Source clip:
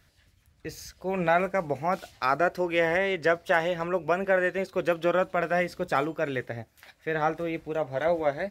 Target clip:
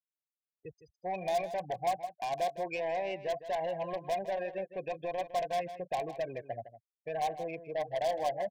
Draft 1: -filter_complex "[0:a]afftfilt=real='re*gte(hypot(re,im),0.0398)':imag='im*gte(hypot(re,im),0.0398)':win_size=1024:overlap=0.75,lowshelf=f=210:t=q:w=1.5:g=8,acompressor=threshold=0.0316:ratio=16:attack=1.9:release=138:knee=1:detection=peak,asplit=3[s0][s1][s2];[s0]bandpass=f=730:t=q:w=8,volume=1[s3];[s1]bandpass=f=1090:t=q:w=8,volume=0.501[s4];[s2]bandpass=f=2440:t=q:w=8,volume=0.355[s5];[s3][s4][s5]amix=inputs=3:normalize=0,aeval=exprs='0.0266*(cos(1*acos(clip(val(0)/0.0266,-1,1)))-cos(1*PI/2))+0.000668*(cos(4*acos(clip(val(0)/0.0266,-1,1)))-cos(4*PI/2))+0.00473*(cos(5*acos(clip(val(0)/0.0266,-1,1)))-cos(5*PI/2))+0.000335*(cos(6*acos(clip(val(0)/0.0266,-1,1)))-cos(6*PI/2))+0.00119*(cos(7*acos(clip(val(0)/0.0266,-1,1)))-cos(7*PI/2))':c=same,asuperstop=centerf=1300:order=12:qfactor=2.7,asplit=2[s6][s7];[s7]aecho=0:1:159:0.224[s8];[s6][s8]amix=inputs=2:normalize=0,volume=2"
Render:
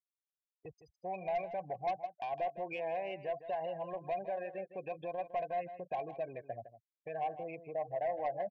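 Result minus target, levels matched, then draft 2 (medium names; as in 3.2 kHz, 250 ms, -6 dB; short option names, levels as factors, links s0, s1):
compression: peak gain reduction +5.5 dB
-filter_complex "[0:a]afftfilt=real='re*gte(hypot(re,im),0.0398)':imag='im*gte(hypot(re,im),0.0398)':win_size=1024:overlap=0.75,lowshelf=f=210:t=q:w=1.5:g=8,acompressor=threshold=0.0631:ratio=16:attack=1.9:release=138:knee=1:detection=peak,asplit=3[s0][s1][s2];[s0]bandpass=f=730:t=q:w=8,volume=1[s3];[s1]bandpass=f=1090:t=q:w=8,volume=0.501[s4];[s2]bandpass=f=2440:t=q:w=8,volume=0.355[s5];[s3][s4][s5]amix=inputs=3:normalize=0,aeval=exprs='0.0266*(cos(1*acos(clip(val(0)/0.0266,-1,1)))-cos(1*PI/2))+0.000668*(cos(4*acos(clip(val(0)/0.0266,-1,1)))-cos(4*PI/2))+0.00473*(cos(5*acos(clip(val(0)/0.0266,-1,1)))-cos(5*PI/2))+0.000335*(cos(6*acos(clip(val(0)/0.0266,-1,1)))-cos(6*PI/2))+0.00119*(cos(7*acos(clip(val(0)/0.0266,-1,1)))-cos(7*PI/2))':c=same,asuperstop=centerf=1300:order=12:qfactor=2.7,asplit=2[s6][s7];[s7]aecho=0:1:159:0.224[s8];[s6][s8]amix=inputs=2:normalize=0,volume=2"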